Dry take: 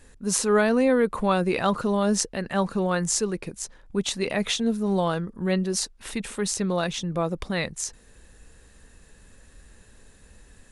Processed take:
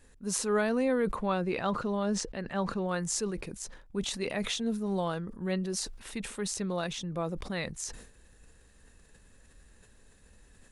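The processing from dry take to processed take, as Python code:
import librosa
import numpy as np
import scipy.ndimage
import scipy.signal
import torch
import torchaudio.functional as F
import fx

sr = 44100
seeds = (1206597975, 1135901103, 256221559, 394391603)

y = fx.air_absorb(x, sr, metres=72.0, at=(1.15, 2.89))
y = fx.sustainer(y, sr, db_per_s=78.0)
y = y * 10.0 ** (-7.5 / 20.0)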